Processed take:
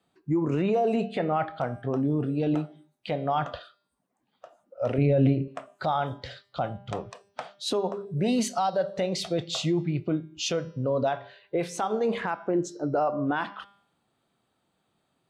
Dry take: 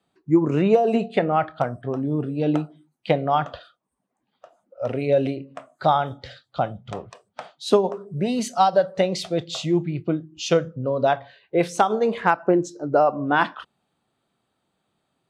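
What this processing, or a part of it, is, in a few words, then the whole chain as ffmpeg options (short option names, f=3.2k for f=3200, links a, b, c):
stacked limiters: -filter_complex "[0:a]bandreject=f=199.9:t=h:w=4,bandreject=f=399.8:t=h:w=4,bandreject=f=599.7:t=h:w=4,bandreject=f=799.6:t=h:w=4,bandreject=f=999.5:t=h:w=4,bandreject=f=1.1994k:t=h:w=4,bandreject=f=1.3993k:t=h:w=4,bandreject=f=1.5992k:t=h:w=4,bandreject=f=1.7991k:t=h:w=4,bandreject=f=1.999k:t=h:w=4,bandreject=f=2.1989k:t=h:w=4,bandreject=f=2.3988k:t=h:w=4,bandreject=f=2.5987k:t=h:w=4,bandreject=f=2.7986k:t=h:w=4,bandreject=f=2.9985k:t=h:w=4,bandreject=f=3.1984k:t=h:w=4,bandreject=f=3.3983k:t=h:w=4,bandreject=f=3.5982k:t=h:w=4,bandreject=f=3.7981k:t=h:w=4,bandreject=f=3.998k:t=h:w=4,bandreject=f=4.1979k:t=h:w=4,bandreject=f=4.3978k:t=h:w=4,bandreject=f=4.5977k:t=h:w=4,bandreject=f=4.7976k:t=h:w=4,bandreject=f=4.9975k:t=h:w=4,bandreject=f=5.1974k:t=h:w=4,bandreject=f=5.3973k:t=h:w=4,bandreject=f=5.5972k:t=h:w=4,bandreject=f=5.7971k:t=h:w=4,bandreject=f=5.997k:t=h:w=4,alimiter=limit=-9.5dB:level=0:latency=1:release=355,alimiter=limit=-12.5dB:level=0:latency=1:release=239,alimiter=limit=-17.5dB:level=0:latency=1:release=11,asettb=1/sr,asplit=3[a][b][c];[a]atrim=end=4.984[d];[b]atrim=start=4.98:end=5.48,asetpts=PTS-STARTPTS,afade=t=in:d=0.004:c=qsin,afade=t=out:st=0.496:d=0.004:c=qsin,bass=f=250:g=12,treble=f=4k:g=-12[e];[c]atrim=start=5.476[f];[d][e]acrossfade=d=0.004:c1=hsin:c2=qsin[g];[g][f]acrossfade=d=0.004:c1=qsin:c2=hsin"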